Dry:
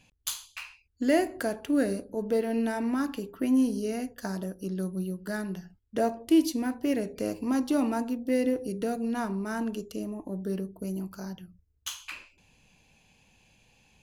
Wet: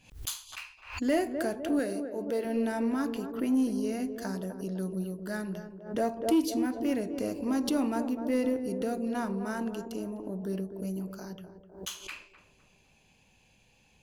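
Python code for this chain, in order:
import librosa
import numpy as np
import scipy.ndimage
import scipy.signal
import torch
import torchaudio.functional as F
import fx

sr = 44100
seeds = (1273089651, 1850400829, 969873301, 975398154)

y = fx.low_shelf(x, sr, hz=190.0, db=-12.0, at=(1.79, 2.45))
y = fx.echo_banded(y, sr, ms=253, feedback_pct=59, hz=460.0, wet_db=-7.5)
y = 10.0 ** (-15.0 / 20.0) * np.tanh(y / 10.0 ** (-15.0 / 20.0))
y = fx.pre_swell(y, sr, db_per_s=120.0)
y = y * 10.0 ** (-2.0 / 20.0)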